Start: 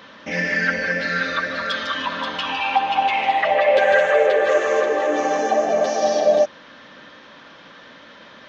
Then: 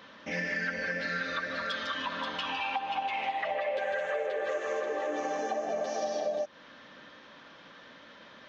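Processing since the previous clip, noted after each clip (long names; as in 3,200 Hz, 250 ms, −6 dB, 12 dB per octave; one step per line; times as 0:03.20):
downward compressor, threshold −21 dBFS, peak gain reduction 9.5 dB
level −8 dB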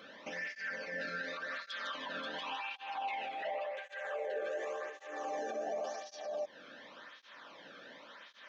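brickwall limiter −31 dBFS, peak gain reduction 11.5 dB
through-zero flanger with one copy inverted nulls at 0.9 Hz, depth 1.1 ms
level +1.5 dB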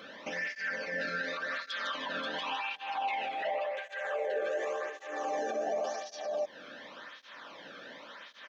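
slap from a distant wall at 70 metres, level −28 dB
level +5 dB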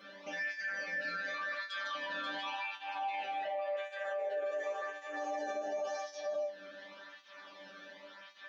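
resonators tuned to a chord G3 fifth, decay 0.23 s
brickwall limiter −38 dBFS, peak gain reduction 8.5 dB
level +8 dB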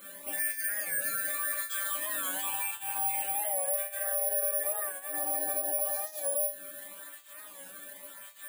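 bad sample-rate conversion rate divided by 4×, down filtered, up zero stuff
wow of a warped record 45 rpm, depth 100 cents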